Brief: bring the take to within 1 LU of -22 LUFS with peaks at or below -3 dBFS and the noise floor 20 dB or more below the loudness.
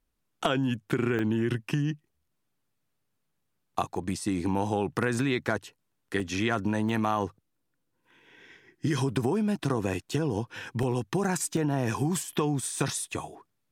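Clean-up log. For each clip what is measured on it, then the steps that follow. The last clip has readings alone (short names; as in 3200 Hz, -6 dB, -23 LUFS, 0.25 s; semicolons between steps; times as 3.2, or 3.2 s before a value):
dropouts 8; longest dropout 1.4 ms; loudness -29.5 LUFS; peak -13.0 dBFS; loudness target -22.0 LUFS
-> interpolate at 1.19/3.97/6.2/6.89/9.09/9.64/10.83/11.57, 1.4 ms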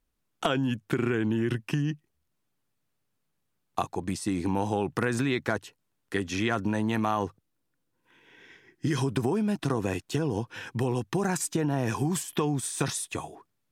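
dropouts 0; loudness -29.5 LUFS; peak -13.0 dBFS; loudness target -22.0 LUFS
-> gain +7.5 dB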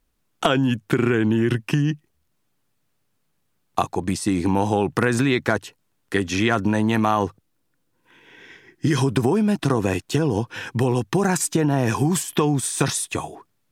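loudness -22.0 LUFS; peak -5.5 dBFS; noise floor -70 dBFS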